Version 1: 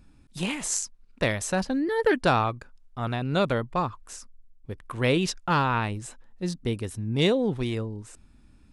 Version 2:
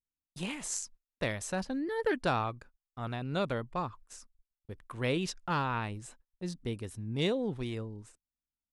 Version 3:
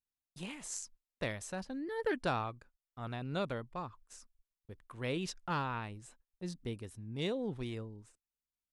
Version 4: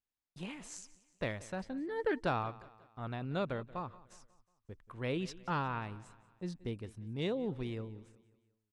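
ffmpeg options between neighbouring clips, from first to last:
ffmpeg -i in.wav -af "agate=range=-38dB:threshold=-44dB:ratio=16:detection=peak,volume=-8dB" out.wav
ffmpeg -i in.wav -af "tremolo=f=0.92:d=0.33,volume=-3.5dB" out.wav
ffmpeg -i in.wav -af "lowpass=frequency=3000:poles=1,aecho=1:1:181|362|543|724:0.106|0.0498|0.0234|0.011,volume=1dB" out.wav

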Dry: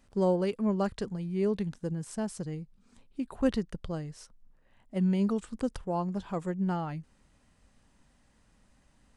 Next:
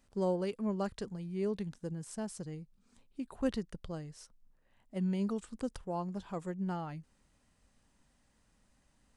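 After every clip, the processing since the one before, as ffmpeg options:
ffmpeg -i in.wav -af "bass=frequency=250:gain=-1,treble=frequency=4000:gain=3,volume=-5.5dB" out.wav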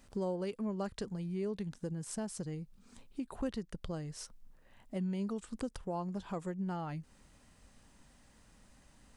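ffmpeg -i in.wav -af "acompressor=threshold=-48dB:ratio=2.5,volume=8.5dB" out.wav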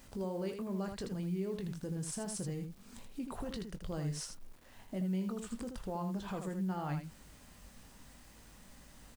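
ffmpeg -i in.wav -filter_complex "[0:a]alimiter=level_in=12.5dB:limit=-24dB:level=0:latency=1:release=20,volume=-12.5dB,acrusher=bits=10:mix=0:aa=0.000001,asplit=2[link_01][link_02];[link_02]aecho=0:1:21|80:0.335|0.447[link_03];[link_01][link_03]amix=inputs=2:normalize=0,volume=4dB" out.wav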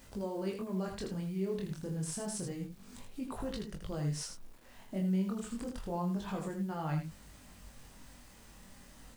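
ffmpeg -i in.wav -af "flanger=delay=19:depth=7.2:speed=0.29,volume=4.5dB" out.wav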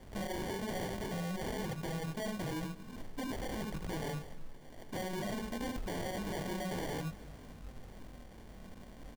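ffmpeg -i in.wav -af "aresample=8000,aeval=exprs='0.0126*(abs(mod(val(0)/0.0126+3,4)-2)-1)':channel_layout=same,aresample=44100,acrusher=samples=34:mix=1:aa=0.000001,aecho=1:1:238|476|714|952|1190:0.1|0.057|0.0325|0.0185|0.0106,volume=5dB" out.wav

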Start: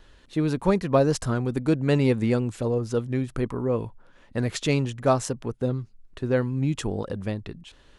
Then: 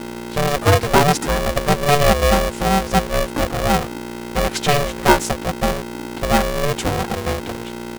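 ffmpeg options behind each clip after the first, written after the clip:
ffmpeg -i in.wav -af "aecho=1:1:4.4:0.8,aeval=exprs='val(0)+0.02*(sin(2*PI*60*n/s)+sin(2*PI*2*60*n/s)/2+sin(2*PI*3*60*n/s)/3+sin(2*PI*4*60*n/s)/4+sin(2*PI*5*60*n/s)/5)':channel_layout=same,aeval=exprs='val(0)*sgn(sin(2*PI*290*n/s))':channel_layout=same,volume=5dB" out.wav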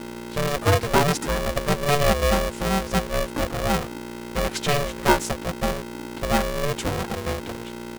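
ffmpeg -i in.wav -af "bandreject=frequency=750:width=14,volume=-5dB" out.wav

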